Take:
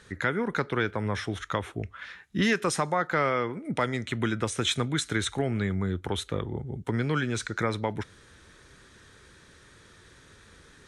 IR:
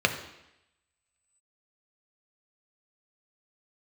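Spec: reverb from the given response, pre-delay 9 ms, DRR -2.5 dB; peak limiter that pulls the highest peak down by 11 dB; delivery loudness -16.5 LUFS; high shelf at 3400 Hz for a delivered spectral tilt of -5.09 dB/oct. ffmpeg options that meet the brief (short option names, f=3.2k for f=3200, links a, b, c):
-filter_complex "[0:a]highshelf=f=3.4k:g=4.5,alimiter=limit=-21.5dB:level=0:latency=1,asplit=2[a][b];[1:a]atrim=start_sample=2205,adelay=9[c];[b][c]afir=irnorm=-1:irlink=0,volume=-12dB[d];[a][d]amix=inputs=2:normalize=0,volume=12dB"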